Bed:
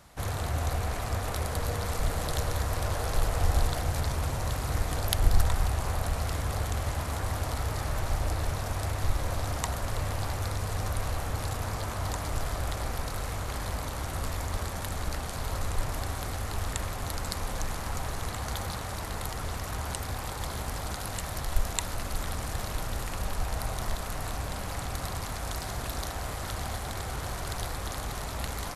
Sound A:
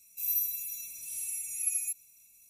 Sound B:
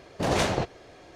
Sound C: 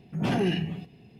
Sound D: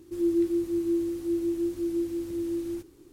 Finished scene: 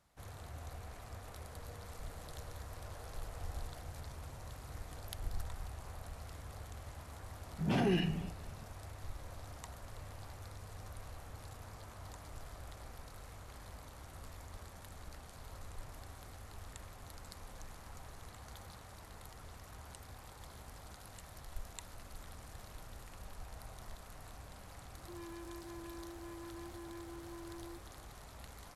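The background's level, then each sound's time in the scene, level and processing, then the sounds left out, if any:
bed −18 dB
0:07.46: mix in C −5.5 dB
0:24.97: mix in D −14.5 dB + hard clipping −34 dBFS
not used: A, B

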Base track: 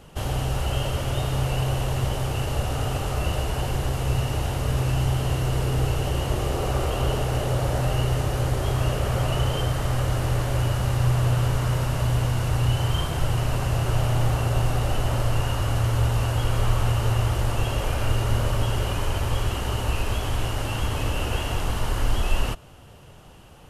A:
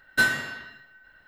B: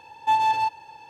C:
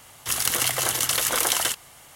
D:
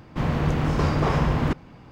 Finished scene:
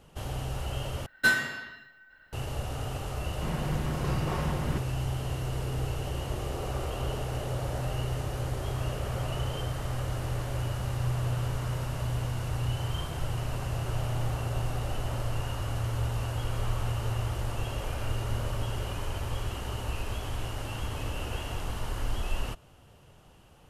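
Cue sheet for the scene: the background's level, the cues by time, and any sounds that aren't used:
base track −8.5 dB
0:01.06: overwrite with A −2 dB
0:03.25: mix in D −10.5 dB + comb filter 5.5 ms, depth 46%
not used: B, C

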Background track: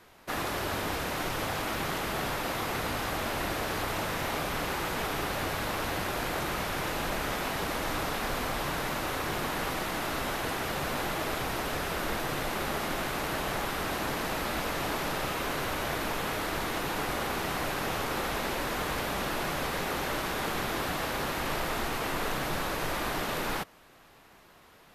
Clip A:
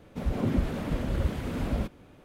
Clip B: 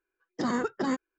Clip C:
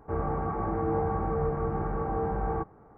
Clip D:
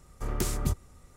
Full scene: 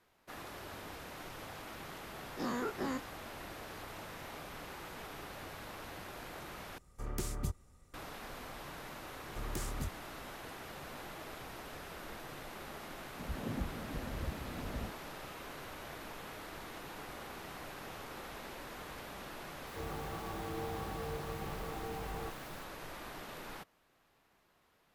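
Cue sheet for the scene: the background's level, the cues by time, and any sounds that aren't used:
background track −15 dB
0:02.01: mix in B −12 dB + every bin's largest magnitude spread in time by 60 ms
0:06.78: overwrite with D −8.5 dB
0:09.15: mix in D −8.5 dB + soft clipping −22 dBFS
0:13.03: mix in A −12.5 dB
0:19.67: mix in C −13 dB + bit-depth reduction 8 bits, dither triangular

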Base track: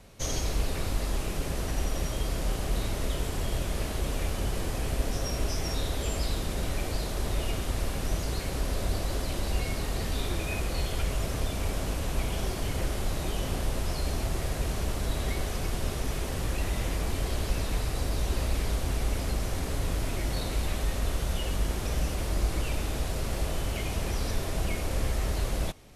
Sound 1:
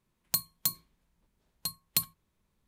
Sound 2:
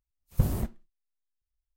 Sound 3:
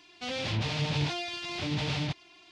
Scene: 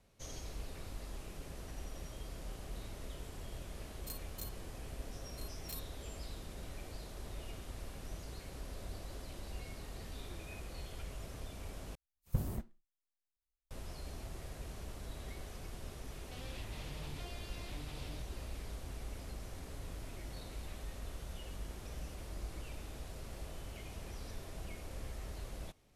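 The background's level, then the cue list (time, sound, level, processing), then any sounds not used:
base track −16 dB
0:03.76: mix in 1 −12.5 dB + spectrum averaged block by block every 50 ms
0:11.95: overwrite with 2 −9.5 dB
0:16.10: mix in 3 −10 dB + downward compressor 2 to 1, threshold −45 dBFS

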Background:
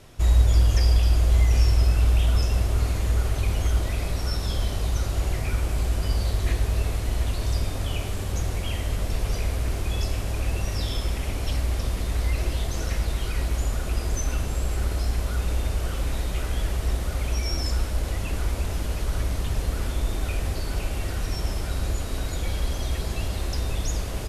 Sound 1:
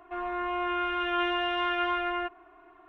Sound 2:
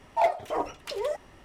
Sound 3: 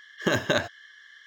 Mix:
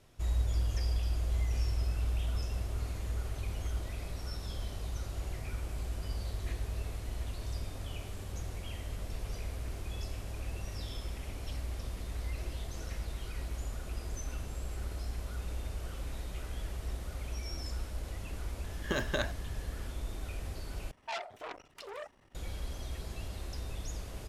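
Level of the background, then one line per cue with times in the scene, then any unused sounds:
background −13 dB
0:18.64: mix in 3 −9 dB
0:20.91: overwrite with 2 −9.5 dB + saturating transformer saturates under 2,800 Hz
not used: 1

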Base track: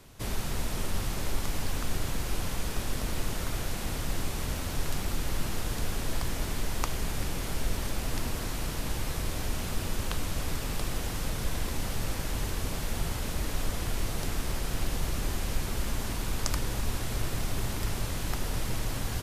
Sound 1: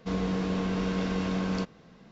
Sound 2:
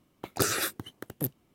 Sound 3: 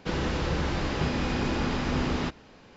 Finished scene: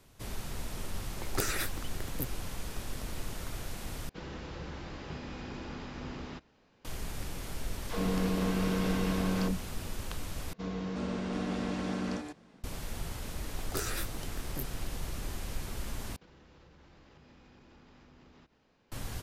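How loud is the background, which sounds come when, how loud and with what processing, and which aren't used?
base track −7 dB
0:00.98: mix in 2 −6 dB + parametric band 2,100 Hz +7 dB 0.35 octaves
0:04.09: overwrite with 3 −14 dB
0:07.83: mix in 1 −1.5 dB + all-pass dispersion lows, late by 113 ms, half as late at 330 Hz
0:10.53: overwrite with 1 −7.5 dB + delay with pitch and tempo change per echo 379 ms, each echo +4 semitones, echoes 2
0:13.35: mix in 2 −10 dB + double-tracking delay 21 ms −4.5 dB
0:16.16: overwrite with 3 −17 dB + downward compressor 5 to 1, threshold −39 dBFS

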